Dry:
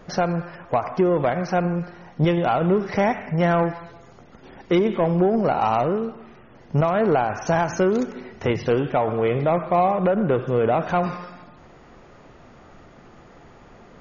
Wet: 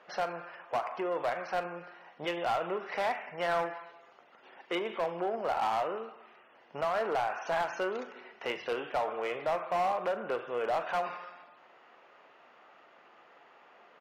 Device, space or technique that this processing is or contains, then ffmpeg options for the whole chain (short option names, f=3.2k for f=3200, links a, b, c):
megaphone: -filter_complex "[0:a]highpass=670,lowpass=3.3k,equalizer=f=2.8k:t=o:w=0.26:g=5.5,asoftclip=type=hard:threshold=-19.5dB,asplit=2[a][b];[b]adelay=41,volume=-13.5dB[c];[a][c]amix=inputs=2:normalize=0,volume=-5.5dB"